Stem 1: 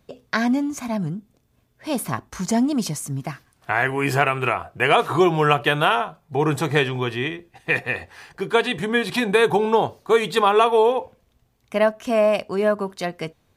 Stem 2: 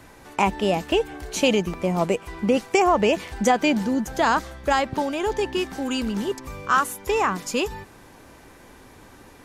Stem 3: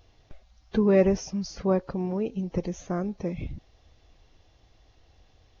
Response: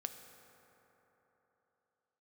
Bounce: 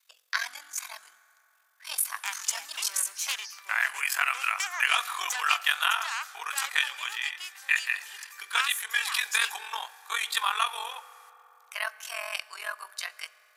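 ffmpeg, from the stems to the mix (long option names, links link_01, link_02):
-filter_complex "[0:a]aeval=exprs='val(0)*sin(2*PI*22*n/s)':channel_layout=same,volume=-5dB,asplit=2[link_01][link_02];[link_02]volume=-3.5dB[link_03];[1:a]aeval=exprs='0.473*(cos(1*acos(clip(val(0)/0.473,-1,1)))-cos(1*PI/2))+0.15*(cos(4*acos(clip(val(0)/0.473,-1,1)))-cos(4*PI/2))+0.0335*(cos(6*acos(clip(val(0)/0.473,-1,1)))-cos(6*PI/2))':channel_layout=same,adelay=1850,volume=-10dB[link_04];[2:a]asoftclip=type=hard:threshold=-19.5dB,adelay=2000,volume=-8dB[link_05];[3:a]atrim=start_sample=2205[link_06];[link_03][link_06]afir=irnorm=-1:irlink=0[link_07];[link_01][link_04][link_05][link_07]amix=inputs=4:normalize=0,highpass=frequency=1200:width=0.5412,highpass=frequency=1200:width=1.3066,highshelf=frequency=5400:gain=11.5"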